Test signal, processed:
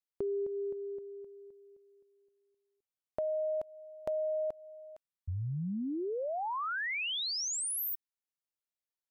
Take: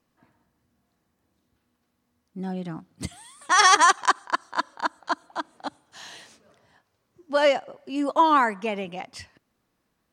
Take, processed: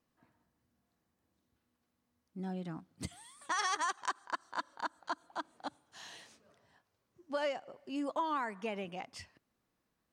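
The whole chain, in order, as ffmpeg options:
-af "acompressor=threshold=-26dB:ratio=3,volume=-8dB"

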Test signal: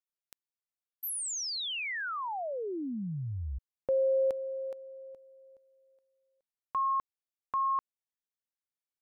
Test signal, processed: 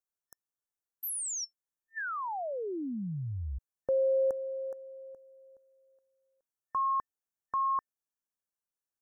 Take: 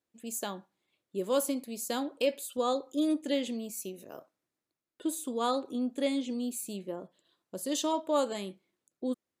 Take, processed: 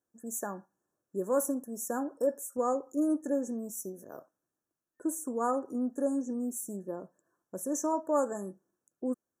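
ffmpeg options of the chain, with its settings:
-af "afftfilt=real='re*(1-between(b*sr/4096,1800,5400))':imag='im*(1-between(b*sr/4096,1800,5400))':win_size=4096:overlap=0.75"

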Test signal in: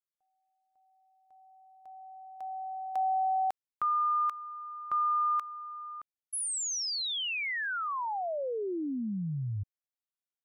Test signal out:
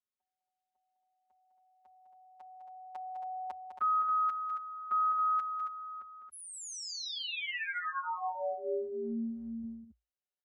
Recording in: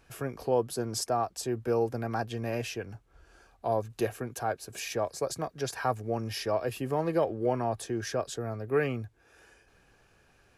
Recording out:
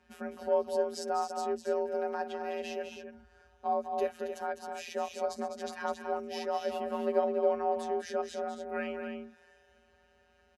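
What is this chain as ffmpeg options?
-filter_complex "[0:a]aemphasis=mode=reproduction:type=50fm,afftfilt=real='hypot(re,im)*cos(PI*b)':imag='0':win_size=1024:overlap=0.75,afreqshift=56,asplit=2[a][b];[b]aecho=0:1:204.1|274.1:0.398|0.398[c];[a][c]amix=inputs=2:normalize=0"

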